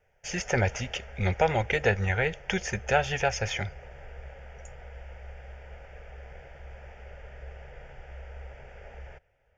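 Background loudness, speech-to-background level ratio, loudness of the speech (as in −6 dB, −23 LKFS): −46.5 LKFS, 18.5 dB, −28.0 LKFS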